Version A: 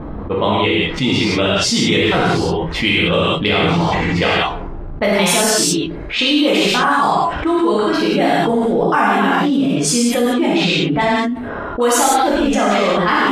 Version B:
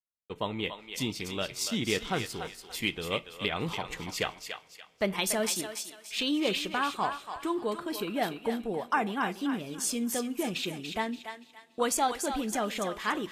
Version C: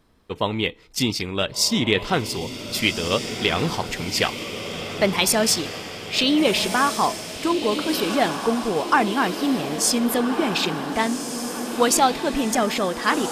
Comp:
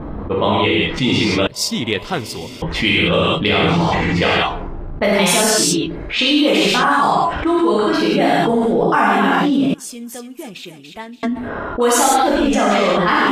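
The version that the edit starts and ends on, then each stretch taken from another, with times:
A
1.47–2.62 s: from C
9.74–11.23 s: from B

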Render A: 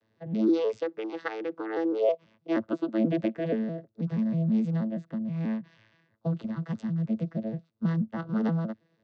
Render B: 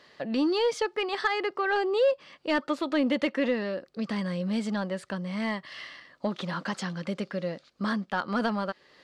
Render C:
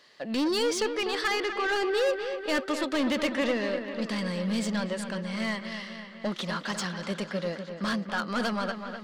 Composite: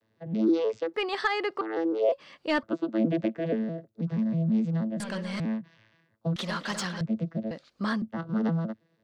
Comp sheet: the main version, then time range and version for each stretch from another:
A
0.94–1.61 s: from B
2.12–2.63 s: from B
5.00–5.40 s: from C
6.36–7.01 s: from C
7.51–8.02 s: from B

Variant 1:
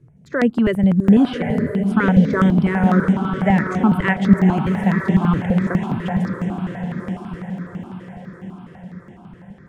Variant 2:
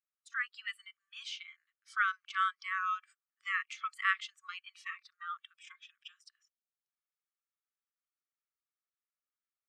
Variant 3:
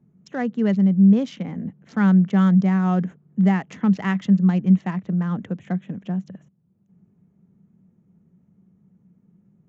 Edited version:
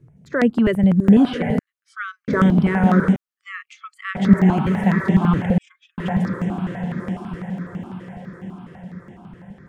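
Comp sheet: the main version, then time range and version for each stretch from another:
1
1.59–2.28 s: from 2
3.16–4.15 s: from 2
5.58–5.98 s: from 2
not used: 3

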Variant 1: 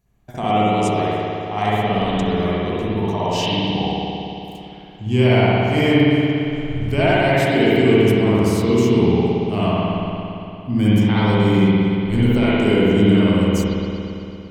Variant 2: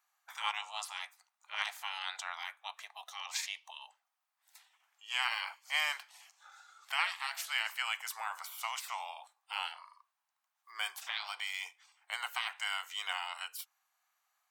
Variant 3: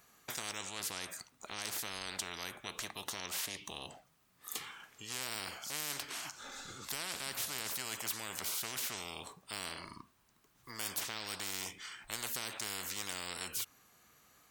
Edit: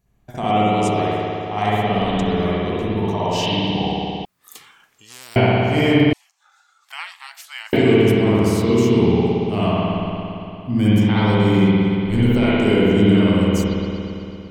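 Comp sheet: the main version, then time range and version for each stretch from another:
1
4.25–5.36 s: from 3
6.13–7.73 s: from 2

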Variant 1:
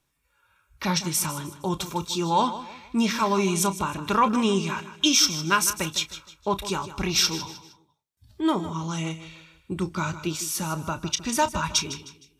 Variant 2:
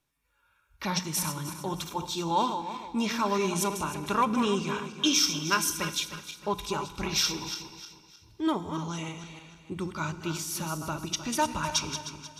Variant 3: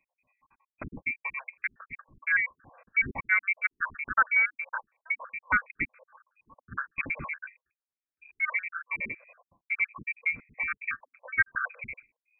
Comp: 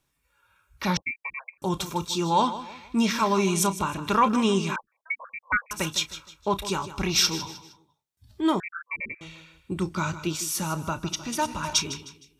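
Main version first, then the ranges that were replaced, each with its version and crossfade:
1
0.97–1.62 s: from 3
4.76–5.71 s: from 3
8.60–9.21 s: from 3
11.09–11.73 s: from 2

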